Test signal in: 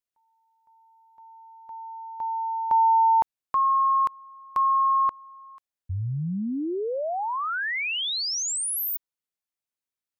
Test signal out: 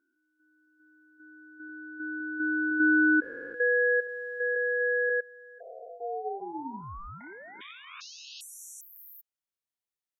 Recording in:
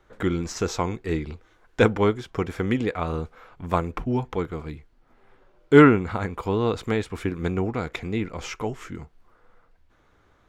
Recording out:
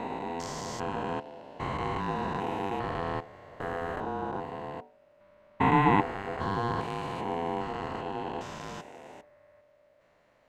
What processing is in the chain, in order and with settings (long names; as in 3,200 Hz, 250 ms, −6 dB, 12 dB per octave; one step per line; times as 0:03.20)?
spectrum averaged block by block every 400 ms
mains-hum notches 50/100/150/200/250/300/350 Hz
ring modulation 590 Hz